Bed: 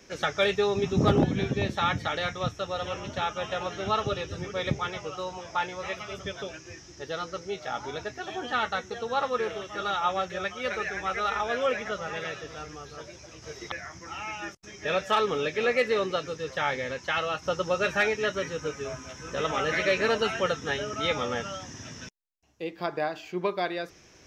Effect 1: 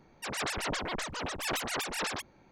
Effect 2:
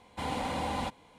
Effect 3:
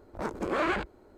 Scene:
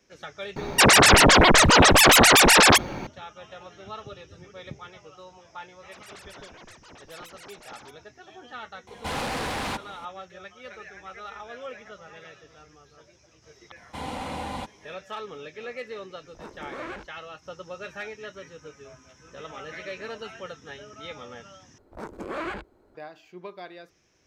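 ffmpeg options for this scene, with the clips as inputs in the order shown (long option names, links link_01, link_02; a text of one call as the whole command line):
ffmpeg -i bed.wav -i cue0.wav -i cue1.wav -i cue2.wav -filter_complex "[1:a]asplit=2[link_01][link_02];[2:a]asplit=2[link_03][link_04];[3:a]asplit=2[link_05][link_06];[0:a]volume=-12dB[link_07];[link_01]alimiter=level_in=32.5dB:limit=-1dB:release=50:level=0:latency=1[link_08];[link_03]aeval=exprs='0.0891*sin(PI/2*3.98*val(0)/0.0891)':channel_layout=same[link_09];[link_07]asplit=2[link_10][link_11];[link_10]atrim=end=21.784[link_12];[link_06]atrim=end=1.17,asetpts=PTS-STARTPTS,volume=-4.5dB[link_13];[link_11]atrim=start=22.946[link_14];[link_08]atrim=end=2.51,asetpts=PTS-STARTPTS,volume=-6dB,afade=type=in:duration=0.004:curve=hsin,afade=type=out:start_time=2.506:duration=0.004:curve=hsin,adelay=560[link_15];[link_02]atrim=end=2.51,asetpts=PTS-STARTPTS,volume=-13dB,afade=type=in:duration=0.004:curve=hsin,afade=type=out:start_time=2.506:duration=0.004:curve=hsin,adelay=250929S[link_16];[link_09]atrim=end=1.18,asetpts=PTS-STARTPTS,volume=-6dB,afade=type=in:duration=0.004:curve=hsin,afade=type=out:start_time=1.176:duration=0.004:curve=hsin,adelay=8870[link_17];[link_04]atrim=end=1.18,asetpts=PTS-STARTPTS,volume=-0.5dB,afade=type=in:duration=0.004:curve=hsin,afade=type=out:start_time=1.176:duration=0.004:curve=hsin,adelay=13760[link_18];[link_05]atrim=end=1.17,asetpts=PTS-STARTPTS,volume=-9.5dB,afade=type=in:duration=0.004:curve=hsin,afade=type=out:start_time=1.166:duration=0.004:curve=hsin,adelay=714420S[link_19];[link_12][link_13]acrossfade=duration=0.004:curve1=hsin:curve2=hsin[link_20];[link_20][link_14]acrossfade=duration=0.004:curve1=hsin:curve2=hsin[link_21];[link_21][link_15][link_16][link_17][link_18][link_19]amix=inputs=6:normalize=0" out.wav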